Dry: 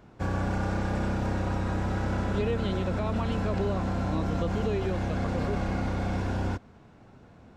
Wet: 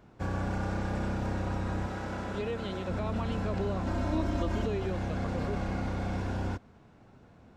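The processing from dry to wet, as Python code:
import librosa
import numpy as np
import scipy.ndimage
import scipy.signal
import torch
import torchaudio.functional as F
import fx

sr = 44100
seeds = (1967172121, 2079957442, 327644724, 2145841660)

y = fx.low_shelf(x, sr, hz=190.0, db=-8.5, at=(1.86, 2.89))
y = fx.comb(y, sr, ms=3.2, depth=0.94, at=(3.86, 4.66))
y = y * librosa.db_to_amplitude(-3.5)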